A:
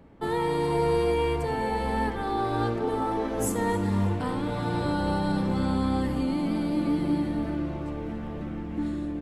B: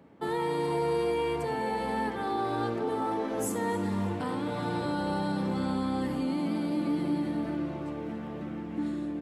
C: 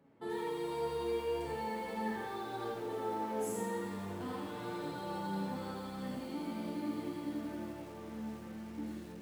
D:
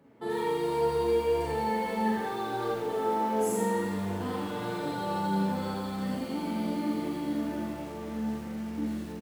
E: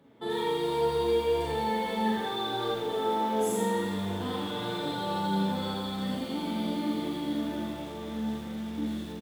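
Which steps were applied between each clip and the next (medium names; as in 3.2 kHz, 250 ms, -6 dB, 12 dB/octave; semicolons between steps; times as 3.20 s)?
high-pass 140 Hz 12 dB/octave; in parallel at +1 dB: peak limiter -22 dBFS, peak gain reduction 7.5 dB; on the sum: trim -8 dB
Schroeder reverb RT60 0.67 s, combs from 25 ms, DRR 0.5 dB; flange 0.41 Hz, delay 6.9 ms, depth 8.7 ms, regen +53%; bit-crushed delay 83 ms, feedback 35%, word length 8-bit, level -4.5 dB; trim -7.5 dB
doubling 41 ms -5 dB; trim +6.5 dB
peaking EQ 3.5 kHz +14.5 dB 0.22 oct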